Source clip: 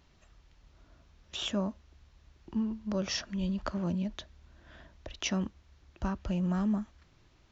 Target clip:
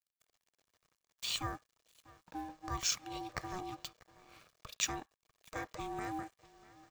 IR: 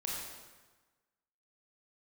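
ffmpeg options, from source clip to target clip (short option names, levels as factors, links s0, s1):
-filter_complex "[0:a]asplit=2[s0][s1];[s1]adelay=699.7,volume=0.126,highshelf=f=4000:g=-15.7[s2];[s0][s2]amix=inputs=2:normalize=0,aeval=exprs='sgn(val(0))*max(abs(val(0))-0.00178,0)':c=same,aemphasis=mode=production:type=bsi,aecho=1:1:1.9:0.31,asetrate=48000,aresample=44100,aeval=exprs='val(0)*sin(2*PI*550*n/s)':c=same,asplit=2[s3][s4];[s4]highpass=f=1300:t=q:w=2.1[s5];[1:a]atrim=start_sample=2205,atrim=end_sample=3528,lowpass=3100[s6];[s5][s6]afir=irnorm=-1:irlink=0,volume=0.0562[s7];[s3][s7]amix=inputs=2:normalize=0,volume=0.891"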